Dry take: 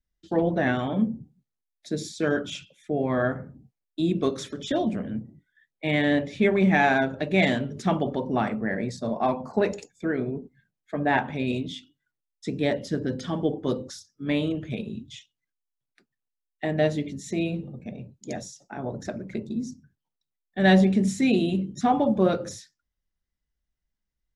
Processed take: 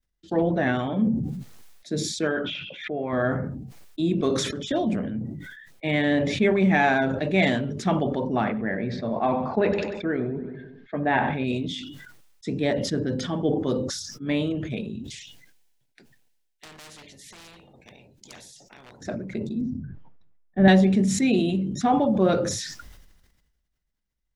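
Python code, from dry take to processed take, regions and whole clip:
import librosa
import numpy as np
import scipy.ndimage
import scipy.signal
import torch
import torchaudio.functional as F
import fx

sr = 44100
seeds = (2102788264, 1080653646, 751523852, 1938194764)

y = fx.chain(x, sr, fx.lowpass(hz=3300.0, slope=24),
    fx.low_shelf(hz=300.0, db=-10.0),
    fx.pre_swell(db_per_s=95.0), at=(2.27, 3.13))
y = fx.chain(y, sr, fx.lowpass(hz=3800.0, slope=24),
    fx.echo_feedback(ms=95, feedback_pct=46, wet_db=-17.5), at=(8.44, 11.44))
y = fx.chain(y, sr, fx.peak_eq(hz=1200.0, db=-12.5, octaves=0.3),
    fx.overload_stage(gain_db=25.5),
    fx.spectral_comp(ratio=4.0), at=(15.04, 19.01))
y = fx.chain(y, sr, fx.lowpass(hz=1900.0, slope=12),
    fx.tilt_eq(slope=-2.5), at=(19.61, 20.68))
y = fx.high_shelf(y, sr, hz=8200.0, db=-3.5)
y = fx.sustainer(y, sr, db_per_s=42.0)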